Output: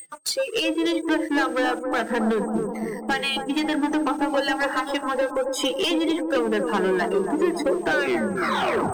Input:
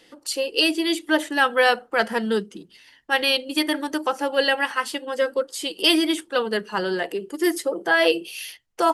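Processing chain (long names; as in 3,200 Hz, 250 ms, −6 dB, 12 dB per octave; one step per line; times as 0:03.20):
turntable brake at the end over 1.07 s
downward compressor 20 to 1, threshold −32 dBFS, peak gain reduction 20.5 dB
high-shelf EQ 4,700 Hz −9.5 dB
steady tone 8,400 Hz −40 dBFS
noise reduction from a noise print of the clip's start 24 dB
leveller curve on the samples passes 3
on a send: bucket-brigade delay 273 ms, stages 2,048, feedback 67%, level −5 dB
on the sum: level +5.5 dB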